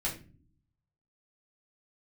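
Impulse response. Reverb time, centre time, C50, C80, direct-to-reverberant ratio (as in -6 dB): no single decay rate, 21 ms, 10.0 dB, 15.0 dB, -6.0 dB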